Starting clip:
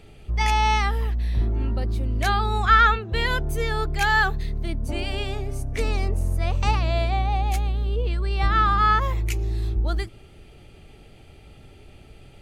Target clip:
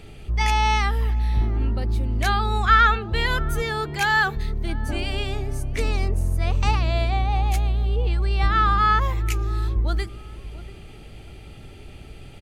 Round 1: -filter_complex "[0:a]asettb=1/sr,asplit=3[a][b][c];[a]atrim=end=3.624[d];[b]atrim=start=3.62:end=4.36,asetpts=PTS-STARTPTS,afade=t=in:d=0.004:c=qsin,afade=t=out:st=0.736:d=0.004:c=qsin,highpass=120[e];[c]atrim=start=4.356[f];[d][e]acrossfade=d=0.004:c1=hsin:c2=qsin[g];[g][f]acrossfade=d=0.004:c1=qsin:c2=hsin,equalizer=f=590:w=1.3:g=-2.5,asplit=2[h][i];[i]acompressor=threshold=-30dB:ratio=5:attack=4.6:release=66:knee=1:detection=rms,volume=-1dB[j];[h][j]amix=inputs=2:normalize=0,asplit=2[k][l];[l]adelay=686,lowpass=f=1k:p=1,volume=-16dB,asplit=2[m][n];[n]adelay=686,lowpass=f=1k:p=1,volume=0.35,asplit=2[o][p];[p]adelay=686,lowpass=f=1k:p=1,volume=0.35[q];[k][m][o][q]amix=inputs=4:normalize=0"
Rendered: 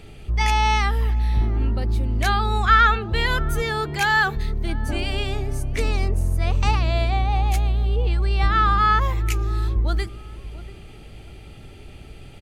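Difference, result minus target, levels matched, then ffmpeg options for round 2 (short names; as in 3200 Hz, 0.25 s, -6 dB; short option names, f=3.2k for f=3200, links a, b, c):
compressor: peak gain reduction -6.5 dB
-filter_complex "[0:a]asettb=1/sr,asplit=3[a][b][c];[a]atrim=end=3.624[d];[b]atrim=start=3.62:end=4.36,asetpts=PTS-STARTPTS,afade=t=in:d=0.004:c=qsin,afade=t=out:st=0.736:d=0.004:c=qsin,highpass=120[e];[c]atrim=start=4.356[f];[d][e]acrossfade=d=0.004:c1=hsin:c2=qsin[g];[g][f]acrossfade=d=0.004:c1=qsin:c2=hsin,equalizer=f=590:w=1.3:g=-2.5,asplit=2[h][i];[i]acompressor=threshold=-38dB:ratio=5:attack=4.6:release=66:knee=1:detection=rms,volume=-1dB[j];[h][j]amix=inputs=2:normalize=0,asplit=2[k][l];[l]adelay=686,lowpass=f=1k:p=1,volume=-16dB,asplit=2[m][n];[n]adelay=686,lowpass=f=1k:p=1,volume=0.35,asplit=2[o][p];[p]adelay=686,lowpass=f=1k:p=1,volume=0.35[q];[k][m][o][q]amix=inputs=4:normalize=0"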